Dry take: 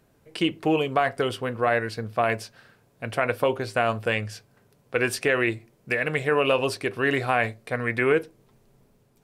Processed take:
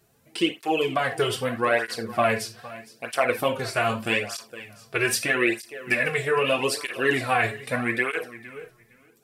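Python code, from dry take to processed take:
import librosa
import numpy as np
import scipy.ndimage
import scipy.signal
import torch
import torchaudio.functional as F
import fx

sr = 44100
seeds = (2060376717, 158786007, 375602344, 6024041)

y = fx.rider(x, sr, range_db=3, speed_s=0.5)
y = fx.high_shelf(y, sr, hz=3400.0, db=9.5)
y = fx.echo_feedback(y, sr, ms=462, feedback_pct=19, wet_db=-17.0)
y = fx.rev_gated(y, sr, seeds[0], gate_ms=110, shape='falling', drr_db=3.5)
y = fx.flanger_cancel(y, sr, hz=0.8, depth_ms=4.1)
y = F.gain(torch.from_numpy(y), 1.0).numpy()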